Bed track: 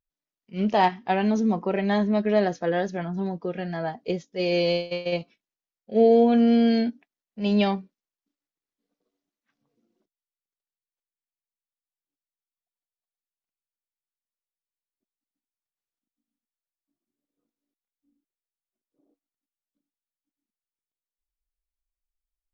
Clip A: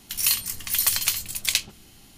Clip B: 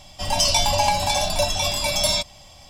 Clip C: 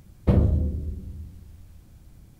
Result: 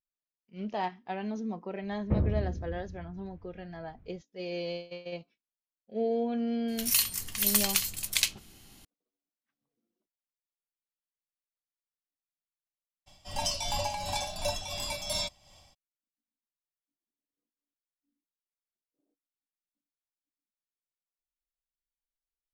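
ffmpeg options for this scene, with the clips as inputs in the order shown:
ffmpeg -i bed.wav -i cue0.wav -i cue1.wav -i cue2.wav -filter_complex "[0:a]volume=-12.5dB[link_01];[3:a]lowpass=frequency=2400:width=0.5412,lowpass=frequency=2400:width=1.3066[link_02];[2:a]tremolo=f=2.8:d=0.56[link_03];[link_02]atrim=end=2.39,asetpts=PTS-STARTPTS,volume=-8.5dB,afade=type=in:duration=0.004:curve=hsin,afade=type=out:start_time=2.386:duration=0.004:curve=hsin,adelay=1830[link_04];[1:a]atrim=end=2.17,asetpts=PTS-STARTPTS,volume=-4dB,afade=type=in:duration=0.004:curve=hsin,afade=type=out:start_time=2.166:duration=0.004:curve=hsin,adelay=6680[link_05];[link_03]atrim=end=2.69,asetpts=PTS-STARTPTS,volume=-10dB,afade=type=in:duration=0.02,afade=type=out:start_time=2.67:duration=0.02,adelay=13060[link_06];[link_01][link_04][link_05][link_06]amix=inputs=4:normalize=0" out.wav

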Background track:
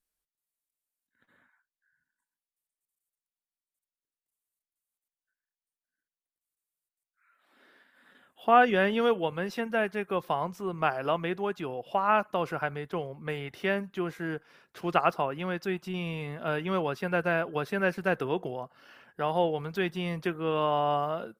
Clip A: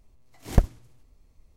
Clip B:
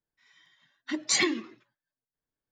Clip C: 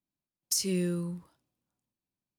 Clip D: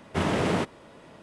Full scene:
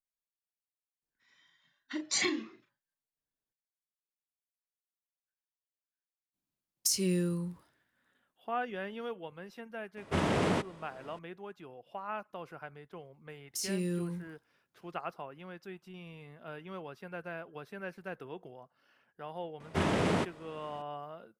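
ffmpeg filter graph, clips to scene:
ffmpeg -i bed.wav -i cue0.wav -i cue1.wav -i cue2.wav -i cue3.wav -filter_complex "[3:a]asplit=2[link_01][link_02];[4:a]asplit=2[link_03][link_04];[0:a]volume=-14.5dB[link_05];[2:a]asplit=2[link_06][link_07];[link_07]adelay=36,volume=-7dB[link_08];[link_06][link_08]amix=inputs=2:normalize=0[link_09];[link_02]alimiter=limit=-24dB:level=0:latency=1:release=26[link_10];[link_09]atrim=end=2.51,asetpts=PTS-STARTPTS,volume=-6.5dB,afade=type=in:duration=0.004:curve=hsin,afade=type=out:start_time=2.506:duration=0.004:curve=hsin,adelay=1020[link_11];[link_01]atrim=end=2.38,asetpts=PTS-STARTPTS,volume=-0.5dB,afade=type=in:duration=0.004:curve=hsin,afade=type=out:start_time=2.376:duration=0.004:curve=hsin,adelay=279594S[link_12];[link_03]atrim=end=1.22,asetpts=PTS-STARTPTS,volume=-4dB,afade=type=in:duration=0.004:curve=hsin,afade=type=out:start_time=1.216:duration=0.004:curve=hsin,adelay=9970[link_13];[link_10]atrim=end=2.38,asetpts=PTS-STARTPTS,volume=-2.5dB,afade=type=in:duration=0.004:curve=hsin,afade=type=out:start_time=2.376:duration=0.004:curve=hsin,adelay=13040[link_14];[link_04]atrim=end=1.22,asetpts=PTS-STARTPTS,volume=-4dB,afade=type=in:duration=0.004:curve=hsin,afade=type=out:start_time=1.216:duration=0.004:curve=hsin,adelay=19600[link_15];[link_05][link_11][link_12][link_13][link_14][link_15]amix=inputs=6:normalize=0" out.wav

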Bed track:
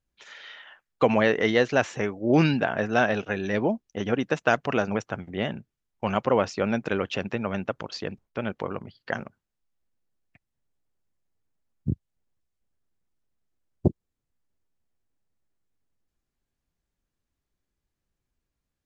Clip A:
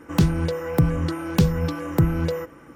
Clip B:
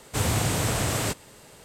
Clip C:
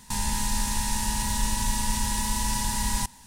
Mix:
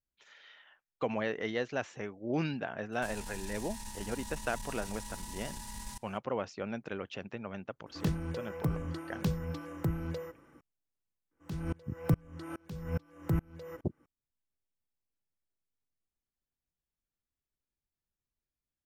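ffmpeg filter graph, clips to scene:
ffmpeg -i bed.wav -i cue0.wav -i cue1.wav -i cue2.wav -filter_complex "[1:a]asplit=2[link_01][link_02];[0:a]volume=-12.5dB[link_03];[3:a]aeval=exprs='(tanh(6.31*val(0)+0.45)-tanh(0.45))/6.31':channel_layout=same[link_04];[link_02]aeval=exprs='val(0)*pow(10,-32*if(lt(mod(-2.4*n/s,1),2*abs(-2.4)/1000),1-mod(-2.4*n/s,1)/(2*abs(-2.4)/1000),(mod(-2.4*n/s,1)-2*abs(-2.4)/1000)/(1-2*abs(-2.4)/1000))/20)':channel_layout=same[link_05];[link_04]atrim=end=3.26,asetpts=PTS-STARTPTS,volume=-15dB,afade=type=in:duration=0.004:curve=hsin,afade=type=out:start_time=3.256:duration=0.004:curve=hsin,adelay=2920[link_06];[link_01]atrim=end=2.75,asetpts=PTS-STARTPTS,volume=-13.5dB,afade=type=in:duration=0.004:curve=hsin,afade=type=out:start_time=2.746:duration=0.004:curve=hsin,adelay=346626S[link_07];[link_05]atrim=end=2.75,asetpts=PTS-STARTPTS,volume=-6.5dB,afade=type=in:duration=0.004:curve=hsin,afade=type=out:start_time=2.746:duration=0.004:curve=hsin,adelay=11310[link_08];[link_03][link_06][link_07][link_08]amix=inputs=4:normalize=0" out.wav

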